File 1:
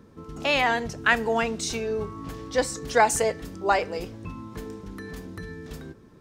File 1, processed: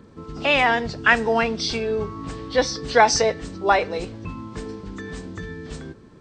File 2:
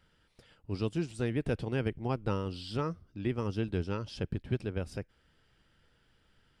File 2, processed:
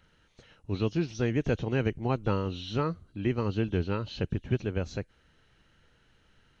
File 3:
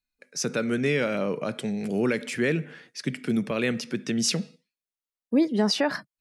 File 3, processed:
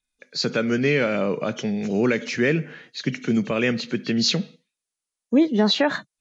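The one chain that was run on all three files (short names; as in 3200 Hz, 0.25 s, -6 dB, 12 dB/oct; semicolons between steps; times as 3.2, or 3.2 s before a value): nonlinear frequency compression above 2700 Hz 1.5:1; high shelf 5200 Hz +5 dB; gain +4 dB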